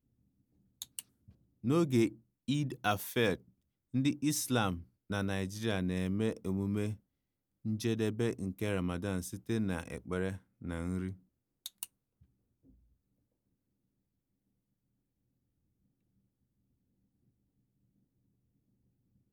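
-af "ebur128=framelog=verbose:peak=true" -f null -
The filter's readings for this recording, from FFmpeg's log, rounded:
Integrated loudness:
  I:         -34.9 LUFS
  Threshold: -45.6 LUFS
Loudness range:
  LRA:        11.7 LU
  Threshold: -56.2 LUFS
  LRA low:   -45.2 LUFS
  LRA high:  -33.5 LUFS
True peak:
  Peak:      -15.4 dBFS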